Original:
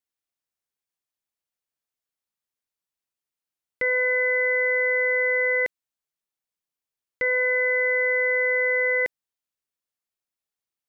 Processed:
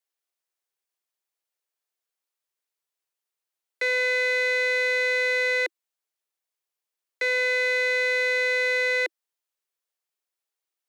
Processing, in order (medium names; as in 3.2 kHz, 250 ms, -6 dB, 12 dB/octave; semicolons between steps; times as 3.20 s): single-diode clipper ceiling -32 dBFS; steep high-pass 330 Hz 96 dB/octave; trim +2 dB